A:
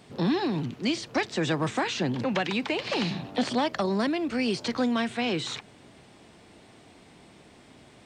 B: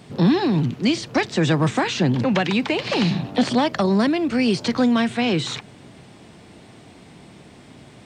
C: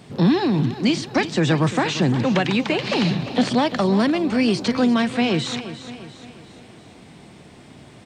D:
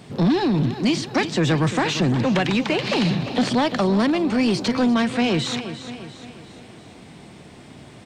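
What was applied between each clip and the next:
bell 140 Hz +6 dB 1.6 oct; gain +5.5 dB
feedback echo 0.348 s, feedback 49%, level -13 dB
soft clip -14.5 dBFS, distortion -17 dB; gain +1.5 dB

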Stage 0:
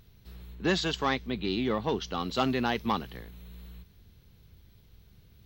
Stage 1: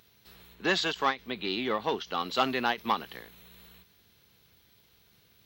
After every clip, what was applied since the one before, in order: HPF 750 Hz 6 dB/oct; dynamic EQ 6400 Hz, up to -5 dB, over -49 dBFS, Q 0.93; ending taper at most 290 dB/s; gain +5 dB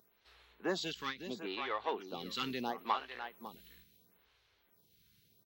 echo 0.553 s -10.5 dB; photocell phaser 0.74 Hz; gain -5 dB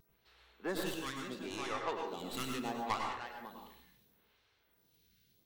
tracing distortion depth 0.2 ms; vibrato 0.66 Hz 20 cents; plate-style reverb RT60 0.64 s, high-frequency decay 0.55×, pre-delay 85 ms, DRR 1.5 dB; gain -3 dB

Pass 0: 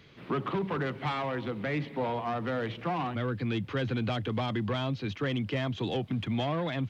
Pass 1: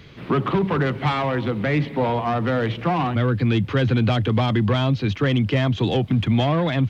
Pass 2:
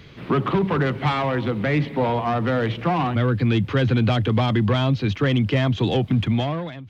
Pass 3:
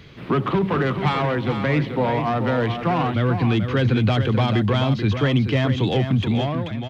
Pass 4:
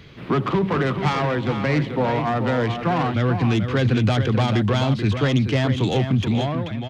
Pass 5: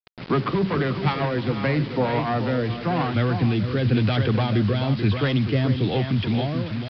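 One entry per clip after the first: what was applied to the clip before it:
low shelf 120 Hz +8.5 dB; gain +9 dB
ending faded out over 0.70 s; reverse; upward compressor, threshold -39 dBFS; reverse
echo 0.435 s -8 dB
self-modulated delay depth 0.16 ms
rotary speaker horn 8 Hz, later 1 Hz, at 1.01; bit-crush 6-bit; downsampling 11025 Hz

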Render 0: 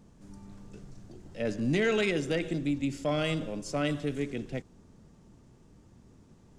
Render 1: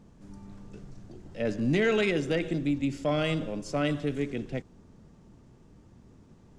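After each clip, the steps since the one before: high shelf 6300 Hz -8 dB; gain +2 dB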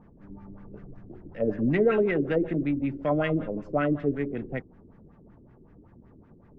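LFO low-pass sine 5.3 Hz 330–2000 Hz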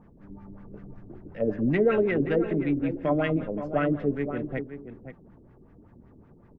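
outdoor echo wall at 90 m, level -10 dB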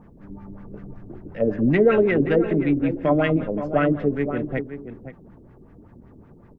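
ending taper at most 230 dB/s; gain +5.5 dB

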